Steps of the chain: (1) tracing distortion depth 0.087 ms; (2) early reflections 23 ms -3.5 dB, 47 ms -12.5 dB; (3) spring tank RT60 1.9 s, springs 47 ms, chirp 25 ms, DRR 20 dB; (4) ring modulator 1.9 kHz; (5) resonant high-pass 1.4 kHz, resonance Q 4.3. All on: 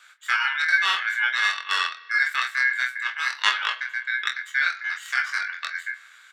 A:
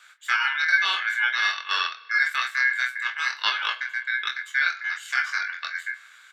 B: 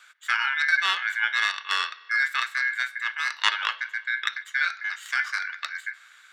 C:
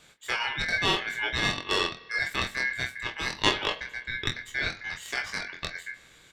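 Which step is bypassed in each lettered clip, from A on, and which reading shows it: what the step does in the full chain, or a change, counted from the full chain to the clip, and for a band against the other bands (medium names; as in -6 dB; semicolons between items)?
1, crest factor change -3.0 dB; 2, loudness change -2.0 LU; 5, 2 kHz band -6.0 dB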